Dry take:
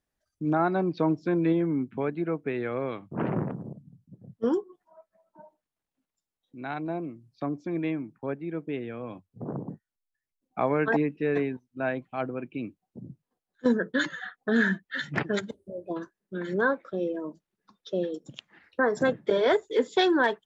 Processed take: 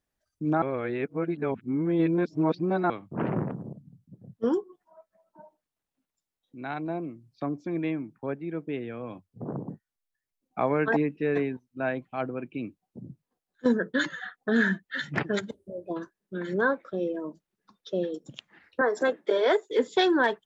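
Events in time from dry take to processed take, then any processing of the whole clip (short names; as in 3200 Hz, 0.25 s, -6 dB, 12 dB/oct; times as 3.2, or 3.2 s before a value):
0.62–2.9 reverse
18.81–19.71 HPF 290 Hz 24 dB/oct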